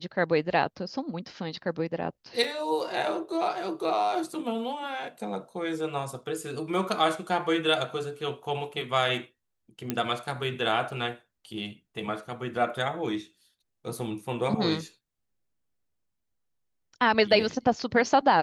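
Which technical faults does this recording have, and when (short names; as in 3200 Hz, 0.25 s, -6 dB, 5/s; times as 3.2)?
2.44 gap 3.7 ms
9.9 pop -13 dBFS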